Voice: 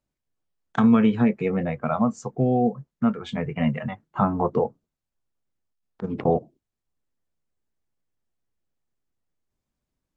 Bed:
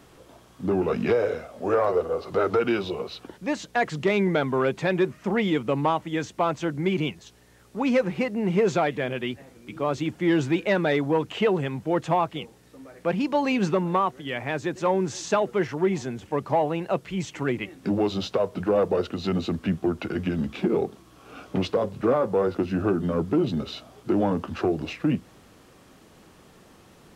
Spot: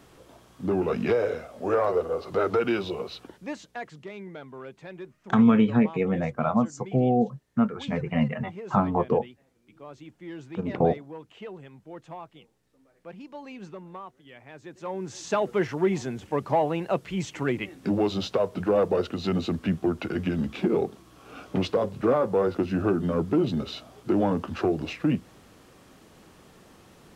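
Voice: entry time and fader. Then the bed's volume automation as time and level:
4.55 s, -1.0 dB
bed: 3.15 s -1.5 dB
4.10 s -18 dB
14.50 s -18 dB
15.48 s -0.5 dB

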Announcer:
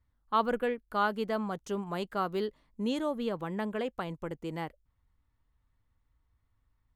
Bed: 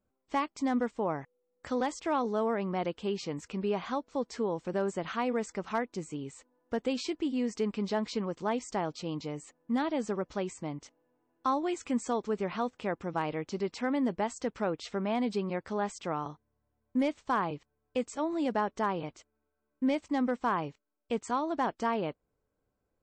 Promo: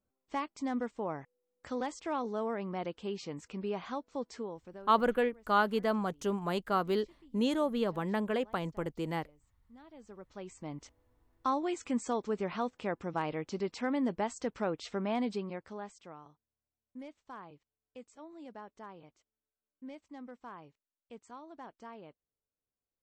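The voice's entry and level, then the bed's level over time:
4.55 s, +1.5 dB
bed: 4.31 s -5 dB
5.19 s -27.5 dB
9.71 s -27.5 dB
10.80 s -2 dB
15.21 s -2 dB
16.25 s -18 dB

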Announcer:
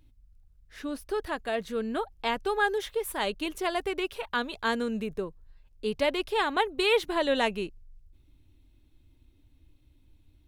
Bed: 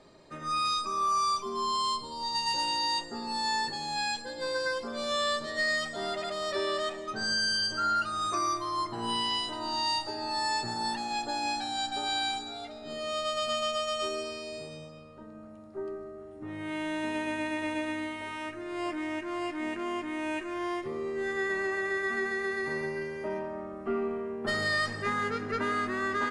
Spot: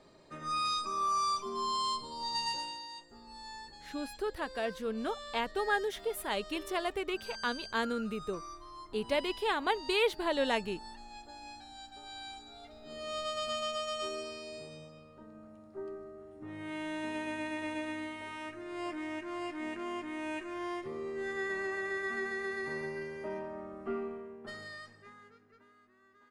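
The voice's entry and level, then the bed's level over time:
3.10 s, -4.5 dB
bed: 2.45 s -3.5 dB
2.87 s -17 dB
12.04 s -17 dB
13.14 s -5 dB
23.91 s -5 dB
25.75 s -34.5 dB

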